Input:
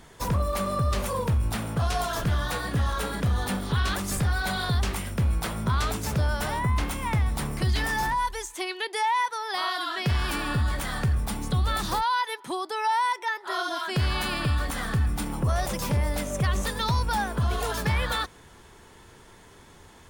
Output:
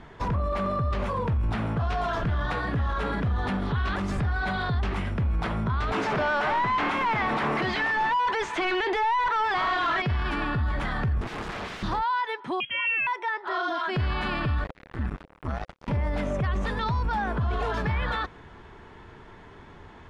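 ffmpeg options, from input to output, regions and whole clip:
ffmpeg -i in.wav -filter_complex "[0:a]asettb=1/sr,asplit=3[link_01][link_02][link_03];[link_01]atrim=end=5.924[link_04];[link_02]atrim=start=5.92:end=10.02,asetpts=PTS-STARTPTS,afade=type=in:duration=0.004:curve=qsin,afade=type=out:start_time=4.096:duration=0.004:curve=qsin,highpass=190,asplit=2[link_05][link_06];[link_06]highpass=frequency=720:poles=1,volume=30dB,asoftclip=type=tanh:threshold=-16.5dB[link_07];[link_05][link_07]amix=inputs=2:normalize=0,lowpass=frequency=3000:poles=1,volume=-6dB[link_08];[link_03]atrim=start=10.016[link_09];[link_04][link_08]acrossfade=duration=0.004:curve1=hsin:curve2=qsin[link_10];[link_10][link_09]acrossfade=duration=0.004:curve1=qsin:curve2=hsin,asettb=1/sr,asplit=3[link_11][link_12][link_13];[link_11]atrim=end=11.214[link_14];[link_12]atrim=start=11.21:end=11.83,asetpts=PTS-STARTPTS,afade=type=in:duration=0.004:curve=qsin,afade=type=out:start_time=0.616:duration=0.004:curve=qsin,equalizer=frequency=100:width_type=o:width=1.2:gain=-6,aeval=exprs='(mod(33.5*val(0)+1,2)-1)/33.5':channel_layout=same[link_15];[link_13]atrim=start=11.826[link_16];[link_14][link_15]acrossfade=duration=0.004:curve1=hsin:curve2=qsin[link_17];[link_17][link_16]acrossfade=duration=0.004:curve1=qsin:curve2=hsin,asettb=1/sr,asplit=3[link_18][link_19][link_20];[link_18]atrim=end=12.604[link_21];[link_19]atrim=start=12.6:end=13.07,asetpts=PTS-STARTPTS,afade=type=in:duration=0.004:curve=qsin,afade=type=out:start_time=0.466:duration=0.004:curve=qsin,lowshelf=frequency=170:gain=11,lowpass=frequency=3100:width_type=q:width=0.5098,lowpass=frequency=3100:width_type=q:width=0.6013,lowpass=frequency=3100:width_type=q:width=0.9,lowpass=frequency=3100:width_type=q:width=2.563,afreqshift=-3600[link_22];[link_20]atrim=start=13.066[link_23];[link_21][link_22]acrossfade=duration=0.004:curve1=hsin:curve2=qsin[link_24];[link_24][link_23]acrossfade=duration=0.004:curve1=qsin:curve2=hsin,asettb=1/sr,asplit=3[link_25][link_26][link_27];[link_25]atrim=end=14.644[link_28];[link_26]atrim=start=14.64:end=15.88,asetpts=PTS-STARTPTS,afade=type=in:duration=0.004:curve=qsin,afade=type=out:start_time=1.236:duration=0.004:curve=qsin,aeval=exprs='val(0)+0.00282*(sin(2*PI*50*n/s)+sin(2*PI*2*50*n/s)/2+sin(2*PI*3*50*n/s)/3+sin(2*PI*4*50*n/s)/4+sin(2*PI*5*50*n/s)/5)':channel_layout=same,acrossover=split=100|860|6700[link_29][link_30][link_31][link_32];[link_29]acompressor=threshold=-25dB:ratio=3[link_33];[link_30]acompressor=threshold=-41dB:ratio=3[link_34];[link_31]acompressor=threshold=-45dB:ratio=3[link_35];[link_32]acompressor=threshold=-53dB:ratio=3[link_36];[link_33][link_34][link_35][link_36]amix=inputs=4:normalize=0,acrusher=bits=3:mix=0:aa=0.5[link_37];[link_27]atrim=start=15.876[link_38];[link_28][link_37]acrossfade=duration=0.004:curve1=hsin:curve2=qsin[link_39];[link_39][link_38]acrossfade=duration=0.004:curve1=qsin:curve2=hsin,lowpass=2400,bandreject=frequency=520:width=12,alimiter=level_in=1dB:limit=-24dB:level=0:latency=1:release=18,volume=-1dB,volume=4.5dB" out.wav

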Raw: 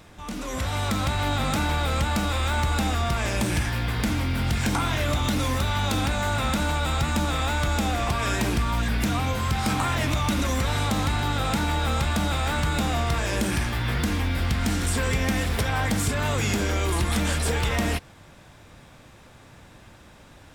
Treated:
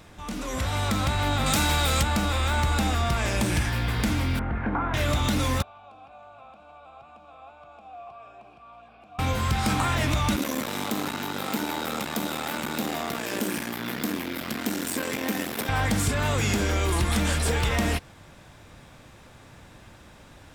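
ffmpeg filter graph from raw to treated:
ffmpeg -i in.wav -filter_complex "[0:a]asettb=1/sr,asplit=3[link_01][link_02][link_03];[link_01]atrim=end=1.464[link_04];[link_02]atrim=start=1.46:end=2.03,asetpts=PTS-STARTPTS,afade=type=in:duration=0.004:curve=qsin,afade=type=out:start_time=0.566:duration=0.004:curve=qsin,highshelf=frequency=3400:gain=11.5,asoftclip=type=hard:threshold=-16dB[link_05];[link_03]atrim=start=2.026[link_06];[link_04][link_05]acrossfade=duration=0.004:curve1=hsin:curve2=qsin[link_07];[link_07][link_06]acrossfade=duration=0.004:curve1=qsin:curve2=hsin,asettb=1/sr,asplit=3[link_08][link_09][link_10];[link_08]atrim=end=4.394[link_11];[link_09]atrim=start=4.39:end=4.94,asetpts=PTS-STARTPTS,afade=type=in:duration=0.004:curve=qsin,afade=type=out:start_time=0.546:duration=0.004:curve=qsin,lowpass=frequency=1700:width=0.5412,lowpass=frequency=1700:width=1.3066,equalizer=frequency=110:width_type=o:width=1.1:gain=-9[link_12];[link_10]atrim=start=4.936[link_13];[link_11][link_12]acrossfade=duration=0.004:curve1=hsin:curve2=qsin[link_14];[link_14][link_13]acrossfade=duration=0.004:curve1=qsin:curve2=hsin,asettb=1/sr,asplit=3[link_15][link_16][link_17];[link_15]atrim=end=5.624[link_18];[link_16]atrim=start=5.62:end=9.19,asetpts=PTS-STARTPTS,afade=type=in:duration=0.004:curve=qsin,afade=type=out:start_time=3.566:duration=0.004:curve=qsin,bandreject=frequency=6200:width=19,acrossover=split=130|1500[link_19][link_20][link_21];[link_19]acompressor=threshold=-28dB:ratio=4[link_22];[link_20]acompressor=threshold=-37dB:ratio=4[link_23];[link_21]acompressor=threshold=-47dB:ratio=4[link_24];[link_22][link_23][link_24]amix=inputs=3:normalize=0,asplit=3[link_25][link_26][link_27];[link_25]bandpass=frequency=730:width_type=q:width=8,volume=0dB[link_28];[link_26]bandpass=frequency=1090:width_type=q:width=8,volume=-6dB[link_29];[link_27]bandpass=frequency=2440:width_type=q:width=8,volume=-9dB[link_30];[link_28][link_29][link_30]amix=inputs=3:normalize=0[link_31];[link_17]atrim=start=9.186[link_32];[link_18][link_31]acrossfade=duration=0.004:curve1=hsin:curve2=qsin[link_33];[link_33][link_32]acrossfade=duration=0.004:curve1=qsin:curve2=hsin,asettb=1/sr,asplit=3[link_34][link_35][link_36];[link_34]atrim=end=10.364[link_37];[link_35]atrim=start=10.36:end=15.69,asetpts=PTS-STARTPTS,afade=type=in:duration=0.004:curve=qsin,afade=type=out:start_time=5.326:duration=0.004:curve=qsin,equalizer=frequency=14000:width=1.6:gain=14.5,aeval=exprs='max(val(0),0)':channel_layout=same,highpass=frequency=250:width_type=q:width=1.8[link_38];[link_36]atrim=start=15.686[link_39];[link_37][link_38]acrossfade=duration=0.004:curve1=hsin:curve2=qsin[link_40];[link_40][link_39]acrossfade=duration=0.004:curve1=qsin:curve2=hsin" out.wav

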